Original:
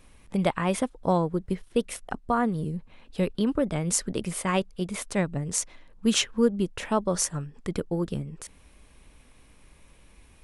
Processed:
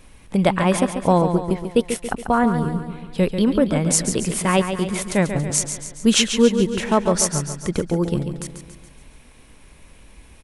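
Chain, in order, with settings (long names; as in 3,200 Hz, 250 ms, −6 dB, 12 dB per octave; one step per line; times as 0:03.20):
notch filter 1,200 Hz, Q 22
repeating echo 140 ms, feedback 53%, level −8.5 dB
level +7 dB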